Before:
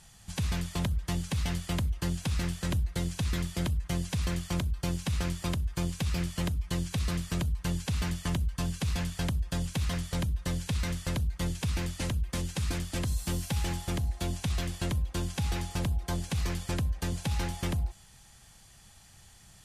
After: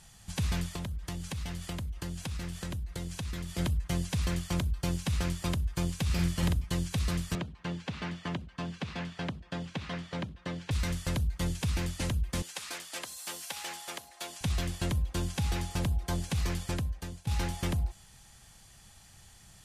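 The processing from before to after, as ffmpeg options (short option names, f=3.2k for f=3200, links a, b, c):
-filter_complex "[0:a]asplit=3[a][b][c];[a]afade=t=out:st=0.7:d=0.02[d];[b]acompressor=threshold=-33dB:ratio=6:attack=3.2:release=140:knee=1:detection=peak,afade=t=in:st=0.7:d=0.02,afade=t=out:st=3.57:d=0.02[e];[c]afade=t=in:st=3.57:d=0.02[f];[d][e][f]amix=inputs=3:normalize=0,asettb=1/sr,asplit=3[g][h][i];[g]atrim=end=6.054[j];[h]atrim=start=6.05:end=6.64,asetpts=PTS-STARTPTS,afade=t=in:d=0.004:c=qsin,afade=t=out:st=0.586:d=0.004:c=qsin,asplit=2[k][l];[l]adelay=47,volume=-3.5dB[m];[k][m]amix=inputs=2:normalize=0,atrim=end_sample=26019[n];[i]atrim=start=6.636[o];[j][n]acrossfade=d=0.004:c1=hsin:c2=qsin[p];[p][o]acrossfade=d=0.004:c1=qsin:c2=hsin,asettb=1/sr,asplit=3[q][r][s];[q]atrim=end=7.354[t];[r]atrim=start=7.35:end=10.71,asetpts=PTS-STARTPTS,afade=t=in:d=0.004:c=qsin,afade=t=out:st=3.356:d=0.004:c=qsin,highpass=180,lowpass=3.2k[u];[s]atrim=start=10.706[v];[t][u]acrossfade=d=0.004:c1=hsin:c2=qsin[w];[w][v]acrossfade=d=0.004:c1=qsin:c2=hsin,asettb=1/sr,asplit=3[x][y][z];[x]atrim=end=12.424[aa];[y]atrim=start=12.42:end=14.41,asetpts=PTS-STARTPTS,afade=t=in:d=0.004:c=qsin,afade=t=out:st=1.986:d=0.004:c=qsin,highpass=670[ab];[z]atrim=start=14.406[ac];[aa][ab]acrossfade=d=0.004:c1=hsin:c2=qsin[ad];[ad][ac]acrossfade=d=0.004:c1=qsin:c2=hsin,asplit=2[ae][af];[ae]atrim=end=17.27,asetpts=PTS-STARTPTS,afade=t=out:st=16.62:d=0.65:silence=0.125893[ag];[af]atrim=start=17.27,asetpts=PTS-STARTPTS,afade=t=in:d=0.004:c=hsin:silence=0.125893[ah];[ag][ah]concat=n=2:v=0:a=1"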